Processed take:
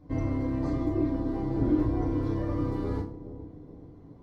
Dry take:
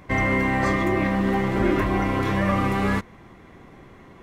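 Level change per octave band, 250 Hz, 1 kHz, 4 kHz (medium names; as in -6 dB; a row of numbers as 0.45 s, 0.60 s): -4.5 dB, -16.0 dB, under -15 dB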